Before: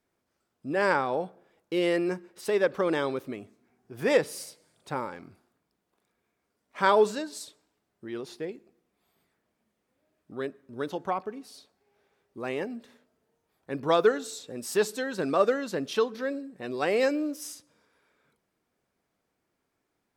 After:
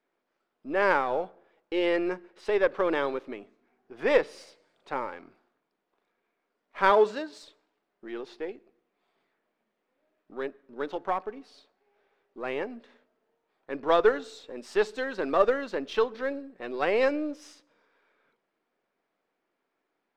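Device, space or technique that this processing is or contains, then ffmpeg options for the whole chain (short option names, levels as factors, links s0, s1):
crystal radio: -filter_complex "[0:a]highpass=310,lowpass=3300,aeval=exprs='if(lt(val(0),0),0.708*val(0),val(0))':c=same,asettb=1/sr,asplit=3[s0][s1][s2];[s0]atrim=end=6.904[s3];[s1]atrim=start=6.9:end=7.43,asetpts=PTS-STARTPTS,afade=t=in:d=0.004:c=qsin,afade=t=out:st=0.526:d=0.004:c=qsin,highpass=77[s4];[s2]atrim=start=7.426[s5];[s3][s4]acrossfade=d=0.004:c1=hsin:c2=qsin[s6];[s6][s5]acrossfade=d=0.004:c1=qsin:c2=hsin,volume=1.33"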